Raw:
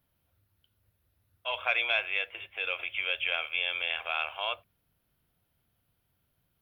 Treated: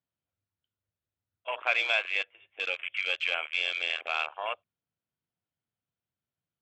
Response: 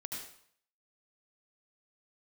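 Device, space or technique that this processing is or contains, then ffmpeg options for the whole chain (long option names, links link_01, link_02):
over-cleaned archive recording: -af "highpass=110,lowpass=5000,afwtdn=0.0158,volume=1.5dB"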